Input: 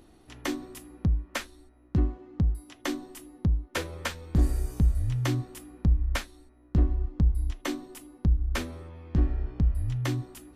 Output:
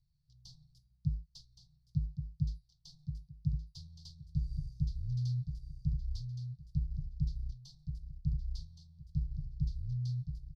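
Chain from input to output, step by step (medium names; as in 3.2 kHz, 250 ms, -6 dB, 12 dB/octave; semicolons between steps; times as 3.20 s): companding laws mixed up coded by A; inverse Chebyshev band-stop 260–2300 Hz, stop band 40 dB; compression 3:1, threshold -24 dBFS, peak gain reduction 6 dB; FFT filter 110 Hz 0 dB, 150 Hz +15 dB, 300 Hz -23 dB, 750 Hz +8 dB, 1.1 kHz +8 dB, 1.7 kHz -26 dB, 4.7 kHz +3 dB, 7.7 kHz -20 dB, 12 kHz -26 dB; on a send: feedback delay 1119 ms, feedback 23%, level -7 dB; on the sum: trim -8.5 dB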